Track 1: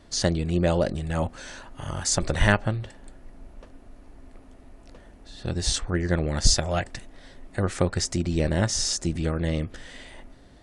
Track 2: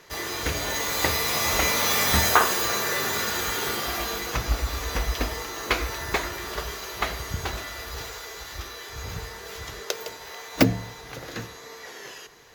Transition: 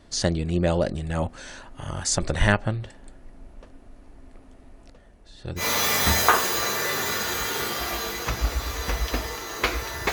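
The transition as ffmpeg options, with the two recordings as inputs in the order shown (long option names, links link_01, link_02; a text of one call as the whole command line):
ffmpeg -i cue0.wav -i cue1.wav -filter_complex "[0:a]asettb=1/sr,asplit=3[link_01][link_02][link_03];[link_01]atrim=end=4.904[link_04];[link_02]atrim=start=4.9:end=5.66,asetpts=PTS-STARTPTS,afade=type=in:duration=0.004:curve=qsin,afade=type=out:start_time=0.756:duration=0.004:curve=qsin,flanger=delay=1.4:depth=1.8:regen=-66:speed=0.39:shape=triangular[link_05];[link_03]atrim=start=5.656[link_06];[link_04][link_05]acrossfade=duration=0.004:curve1=hsin:curve2=qsin[link_07];[link_07][link_06]acrossfade=duration=0.004:curve1=qsin:curve2=hsin,apad=whole_dur=10.12,atrim=end=10.12,atrim=end=5.66,asetpts=PTS-STARTPTS[link_08];[1:a]atrim=start=1.63:end=6.19,asetpts=PTS-STARTPTS[link_09];[link_08][link_09]acrossfade=duration=0.1:curve1=tri:curve2=tri" out.wav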